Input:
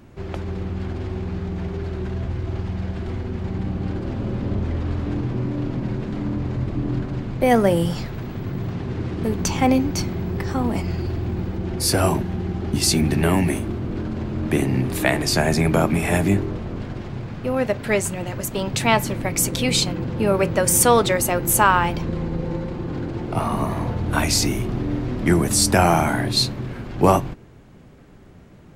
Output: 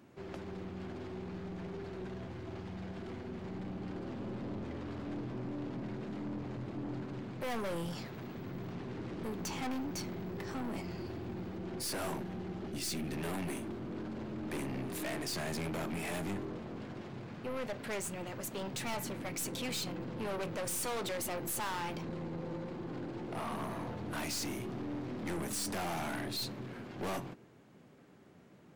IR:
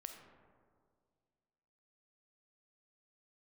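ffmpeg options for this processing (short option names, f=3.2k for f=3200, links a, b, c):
-filter_complex "[0:a]highpass=170,aeval=exprs='(tanh(20*val(0)+0.3)-tanh(0.3))/20':c=same,asettb=1/sr,asplit=3[a][b][c];[a]atrim=end=12.684[d];[b]atrim=start=12.68:end=13.14,asetpts=PTS-STARTPTS,afade=t=in:d=0.004:c=qsin,afade=t=out:st=0.456:d=0.004:c=qsin,equalizer=f=950:w=1.6:g=-7.5[e];[c]atrim=start=13.136[f];[d][e]acrossfade=d=0.004:c1=hsin:c2=qsin[g];[g][f]acrossfade=d=0.004:c1=qsin:c2=hsin,volume=-9dB"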